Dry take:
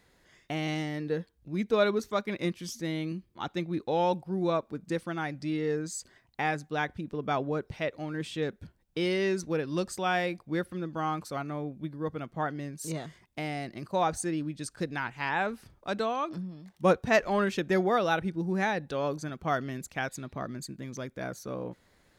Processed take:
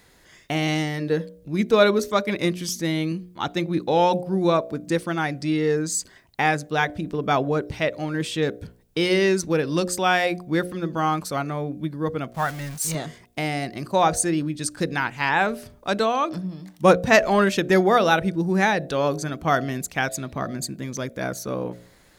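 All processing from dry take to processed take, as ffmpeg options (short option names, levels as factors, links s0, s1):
-filter_complex "[0:a]asettb=1/sr,asplit=3[s0][s1][s2];[s0]atrim=end=12.334[s3];[s1]atrim=start=12.33:end=12.95,asetpts=PTS-STARTPTS,afade=t=in:d=0.004:c=qsin,afade=t=out:st=0.616:d=0.004:c=qsin,aeval=exprs='val(0)+0.5*0.00841*sgn(val(0))':c=same,agate=range=0.0224:threshold=0.0126:ratio=3:release=100:detection=peak,equalizer=f=340:t=o:w=1.1:g=-14[s4];[s2]atrim=start=12.946[s5];[s3][s4]acrossfade=d=0.004:c1=hsin:c2=qsin[s6];[s6][s5]acrossfade=d=0.004:c1=qsin:c2=hsin,highshelf=f=5600:g=6,bandreject=f=59.66:t=h:w=4,bandreject=f=119.32:t=h:w=4,bandreject=f=178.98:t=h:w=4,bandreject=f=238.64:t=h:w=4,bandreject=f=298.3:t=h:w=4,bandreject=f=357.96:t=h:w=4,bandreject=f=417.62:t=h:w=4,bandreject=f=477.28:t=h:w=4,bandreject=f=536.94:t=h:w=4,bandreject=f=596.6:t=h:w=4,bandreject=f=656.26:t=h:w=4,bandreject=f=715.92:t=h:w=4,volume=2.66"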